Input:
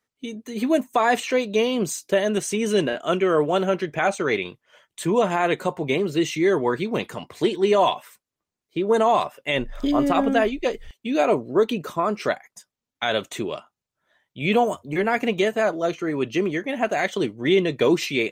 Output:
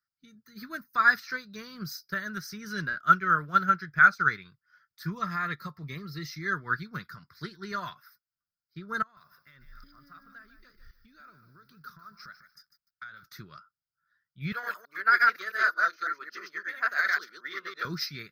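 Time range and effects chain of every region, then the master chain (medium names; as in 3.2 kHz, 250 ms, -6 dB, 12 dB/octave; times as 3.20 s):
5.12–6.32 s: Butterworth band-stop 1.5 kHz, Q 6.1 + upward compressor, threshold -29 dBFS
9.02–13.23 s: compression 4:1, threshold -36 dBFS + bit-crushed delay 149 ms, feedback 35%, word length 9-bit, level -9.5 dB
14.52–17.85 s: chunks repeated in reverse 111 ms, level 0 dB + high-pass 420 Hz 24 dB/octave + transformer saturation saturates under 860 Hz
whole clip: FFT filter 170 Hz 0 dB, 250 Hz -14 dB, 490 Hz -22 dB, 840 Hz -23 dB, 1.4 kHz +12 dB, 2.9 kHz -20 dB, 5 kHz +11 dB, 7.5 kHz -24 dB, 14 kHz +7 dB; upward expansion 1.5:1, over -42 dBFS; trim +2 dB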